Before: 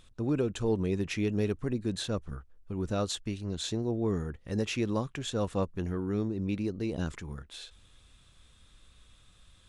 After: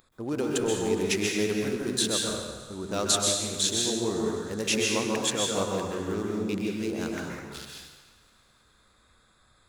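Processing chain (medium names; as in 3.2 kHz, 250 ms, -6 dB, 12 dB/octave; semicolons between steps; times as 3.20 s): local Wiener filter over 15 samples; RIAA curve recording; thinning echo 103 ms, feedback 81%, high-pass 420 Hz, level -19 dB; plate-style reverb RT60 1.3 s, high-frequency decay 0.7×, pre-delay 115 ms, DRR -2 dB; trim +3.5 dB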